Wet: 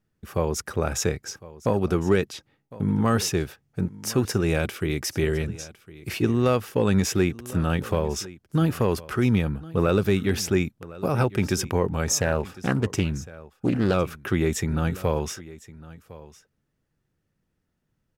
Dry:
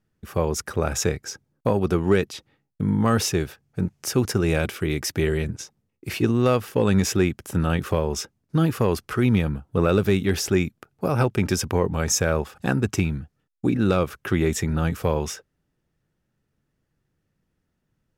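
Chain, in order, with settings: echo 1.057 s -19 dB; 12.18–13.94 Doppler distortion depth 0.33 ms; gain -1.5 dB

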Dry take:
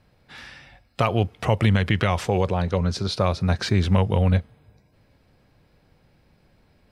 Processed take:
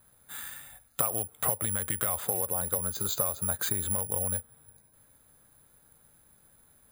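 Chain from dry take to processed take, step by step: dynamic EQ 580 Hz, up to +7 dB, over -36 dBFS, Q 1.2; compressor 12:1, threshold -24 dBFS, peak gain reduction 14 dB; rippled Chebyshev low-pass 5000 Hz, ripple 9 dB; careless resampling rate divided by 4×, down filtered, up zero stuff

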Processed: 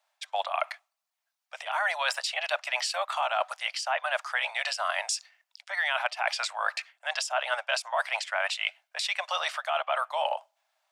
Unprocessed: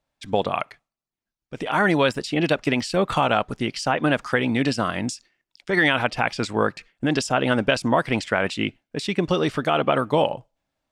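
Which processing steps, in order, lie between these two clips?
steep high-pass 620 Hz 72 dB/oct; reverse; compressor 5:1, threshold -33 dBFS, peak gain reduction 15.5 dB; reverse; gain +6.5 dB

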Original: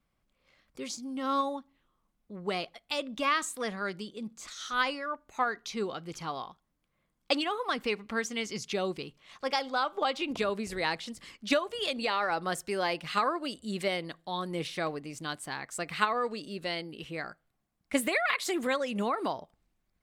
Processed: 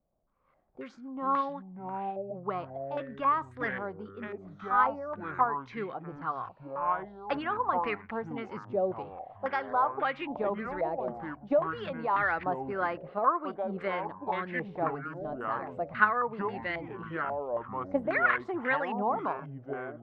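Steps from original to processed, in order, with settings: echoes that change speed 0.108 s, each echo -6 st, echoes 3, each echo -6 dB; stepped low-pass 3.7 Hz 640–1800 Hz; gain -4 dB

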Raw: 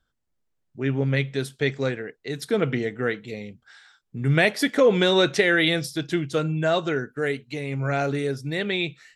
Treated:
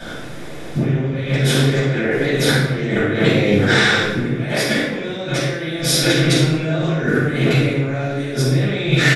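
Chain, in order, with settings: per-bin compression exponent 0.6; 5.82–6.76 low shelf 220 Hz -7.5 dB; outdoor echo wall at 100 m, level -21 dB; negative-ratio compressor -33 dBFS, ratio -1; shoebox room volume 440 m³, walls mixed, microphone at 7.8 m; gain -3.5 dB

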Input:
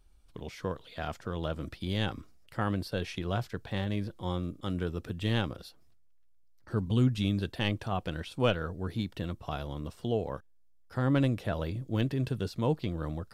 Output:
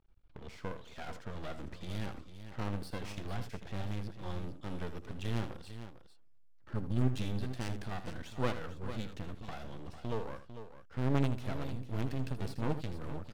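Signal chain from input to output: low-pass opened by the level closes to 2400 Hz, open at -29 dBFS; half-wave rectifier; tapped delay 79/449 ms -12/-11 dB; gain -1.5 dB

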